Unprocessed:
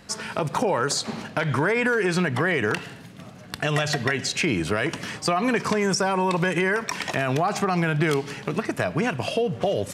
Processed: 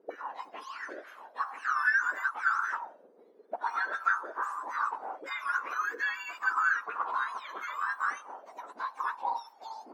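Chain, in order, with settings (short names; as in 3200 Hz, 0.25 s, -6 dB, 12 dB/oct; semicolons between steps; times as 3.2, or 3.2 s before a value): spectrum mirrored in octaves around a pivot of 1600 Hz; auto-wah 400–1600 Hz, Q 4.8, up, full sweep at -23 dBFS; dynamic EQ 1100 Hz, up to +7 dB, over -48 dBFS, Q 0.97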